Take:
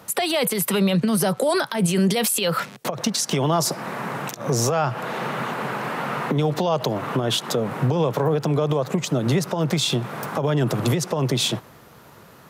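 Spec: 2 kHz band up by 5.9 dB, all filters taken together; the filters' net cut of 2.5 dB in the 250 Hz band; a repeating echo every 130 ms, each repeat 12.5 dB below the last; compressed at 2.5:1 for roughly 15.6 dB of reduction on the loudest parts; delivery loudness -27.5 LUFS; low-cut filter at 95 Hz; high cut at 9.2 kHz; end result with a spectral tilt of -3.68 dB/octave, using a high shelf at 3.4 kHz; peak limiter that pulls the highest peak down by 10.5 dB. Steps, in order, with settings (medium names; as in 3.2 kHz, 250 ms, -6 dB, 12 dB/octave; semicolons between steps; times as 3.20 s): high-pass 95 Hz; low-pass 9.2 kHz; peaking EQ 250 Hz -3.5 dB; peaking EQ 2 kHz +5 dB; treble shelf 3.4 kHz +8.5 dB; compression 2.5:1, threshold -39 dBFS; peak limiter -28 dBFS; feedback delay 130 ms, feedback 24%, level -12.5 dB; trim +9.5 dB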